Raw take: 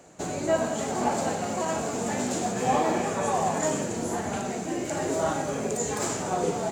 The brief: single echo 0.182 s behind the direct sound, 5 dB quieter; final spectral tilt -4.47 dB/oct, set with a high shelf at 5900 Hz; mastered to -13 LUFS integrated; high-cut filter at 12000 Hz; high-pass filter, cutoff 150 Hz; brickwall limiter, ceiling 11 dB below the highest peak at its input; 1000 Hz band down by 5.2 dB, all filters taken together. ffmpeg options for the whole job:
-af "highpass=150,lowpass=12k,equalizer=f=1k:t=o:g=-7.5,highshelf=f=5.9k:g=-7,alimiter=level_in=2dB:limit=-24dB:level=0:latency=1,volume=-2dB,aecho=1:1:182:0.562,volume=20.5dB"

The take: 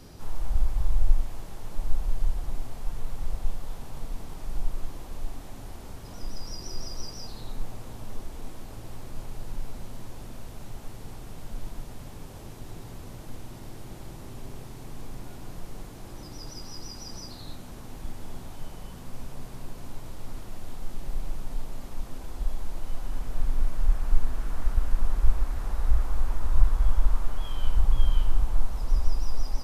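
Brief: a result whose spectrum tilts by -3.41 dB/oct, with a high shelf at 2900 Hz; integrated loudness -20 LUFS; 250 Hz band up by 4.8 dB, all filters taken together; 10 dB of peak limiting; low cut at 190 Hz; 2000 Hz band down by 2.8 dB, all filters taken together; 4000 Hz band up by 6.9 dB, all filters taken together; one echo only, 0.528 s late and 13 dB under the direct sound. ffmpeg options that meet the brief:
-af "highpass=190,equalizer=f=250:t=o:g=8,equalizer=f=2k:t=o:g=-8,highshelf=f=2.9k:g=8,equalizer=f=4k:t=o:g=3.5,alimiter=level_in=9.5dB:limit=-24dB:level=0:latency=1,volume=-9.5dB,aecho=1:1:528:0.224,volume=22.5dB"

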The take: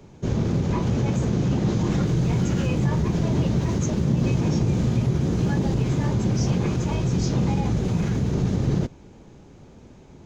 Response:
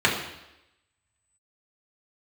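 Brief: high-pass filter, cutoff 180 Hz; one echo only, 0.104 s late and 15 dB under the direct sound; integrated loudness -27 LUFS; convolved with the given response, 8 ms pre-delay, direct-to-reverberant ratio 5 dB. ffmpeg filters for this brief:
-filter_complex "[0:a]highpass=180,aecho=1:1:104:0.178,asplit=2[a][b];[1:a]atrim=start_sample=2205,adelay=8[c];[b][c]afir=irnorm=-1:irlink=0,volume=-23dB[d];[a][d]amix=inputs=2:normalize=0,volume=-1.5dB"

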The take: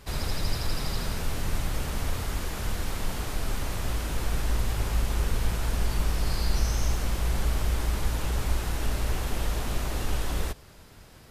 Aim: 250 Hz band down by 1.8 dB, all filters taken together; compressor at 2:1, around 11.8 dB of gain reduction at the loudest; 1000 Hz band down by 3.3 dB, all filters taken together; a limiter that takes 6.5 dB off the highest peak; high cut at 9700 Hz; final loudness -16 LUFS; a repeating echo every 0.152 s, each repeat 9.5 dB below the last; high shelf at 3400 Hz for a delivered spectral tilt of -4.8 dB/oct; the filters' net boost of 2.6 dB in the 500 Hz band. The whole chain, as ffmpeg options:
-af "lowpass=9.7k,equalizer=f=250:t=o:g=-4,equalizer=f=500:t=o:g=6,equalizer=f=1k:t=o:g=-6,highshelf=f=3.4k:g=-3,acompressor=threshold=-42dB:ratio=2,alimiter=level_in=6dB:limit=-24dB:level=0:latency=1,volume=-6dB,aecho=1:1:152|304|456|608:0.335|0.111|0.0365|0.012,volume=27dB"

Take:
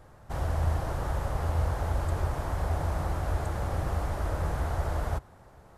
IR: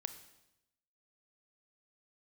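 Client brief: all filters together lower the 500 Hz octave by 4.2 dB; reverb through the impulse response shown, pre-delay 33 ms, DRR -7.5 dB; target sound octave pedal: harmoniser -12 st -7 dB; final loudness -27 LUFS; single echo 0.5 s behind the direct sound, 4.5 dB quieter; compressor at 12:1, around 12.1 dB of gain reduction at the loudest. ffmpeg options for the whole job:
-filter_complex "[0:a]equalizer=f=500:t=o:g=-5.5,acompressor=threshold=-36dB:ratio=12,aecho=1:1:500:0.596,asplit=2[a][b];[1:a]atrim=start_sample=2205,adelay=33[c];[b][c]afir=irnorm=-1:irlink=0,volume=9.5dB[d];[a][d]amix=inputs=2:normalize=0,asplit=2[e][f];[f]asetrate=22050,aresample=44100,atempo=2,volume=-7dB[g];[e][g]amix=inputs=2:normalize=0,volume=6.5dB"

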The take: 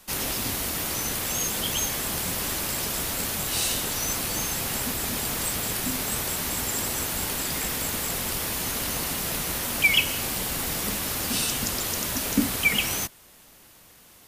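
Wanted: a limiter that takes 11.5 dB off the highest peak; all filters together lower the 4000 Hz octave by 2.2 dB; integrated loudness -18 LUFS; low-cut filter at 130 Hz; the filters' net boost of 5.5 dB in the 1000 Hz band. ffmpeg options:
-af "highpass=130,equalizer=f=1k:t=o:g=7,equalizer=f=4k:t=o:g=-3.5,volume=10dB,alimiter=limit=-10dB:level=0:latency=1"

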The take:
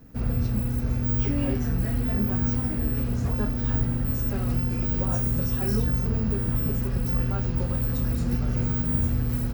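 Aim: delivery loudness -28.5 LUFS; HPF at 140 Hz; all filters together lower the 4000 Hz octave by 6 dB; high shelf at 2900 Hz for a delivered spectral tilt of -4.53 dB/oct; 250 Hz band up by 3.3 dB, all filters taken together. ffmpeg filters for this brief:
-af "highpass=140,equalizer=f=250:t=o:g=4.5,highshelf=f=2.9k:g=-6,equalizer=f=4k:t=o:g=-3,volume=-1dB"

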